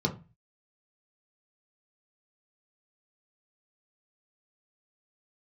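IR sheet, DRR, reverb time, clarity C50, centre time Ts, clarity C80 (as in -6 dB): 0.0 dB, 0.30 s, 14.0 dB, 11 ms, 20.0 dB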